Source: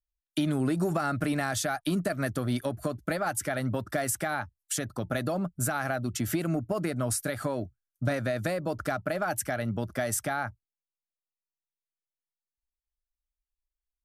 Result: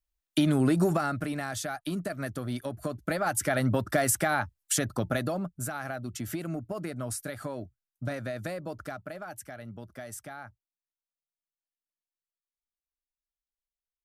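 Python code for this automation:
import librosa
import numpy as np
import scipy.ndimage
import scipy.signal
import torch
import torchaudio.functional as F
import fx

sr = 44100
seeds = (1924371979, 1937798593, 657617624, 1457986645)

y = fx.gain(x, sr, db=fx.line((0.85, 3.5), (1.28, -4.5), (2.62, -4.5), (3.55, 4.0), (4.96, 4.0), (5.63, -5.5), (8.59, -5.5), (9.36, -12.0)))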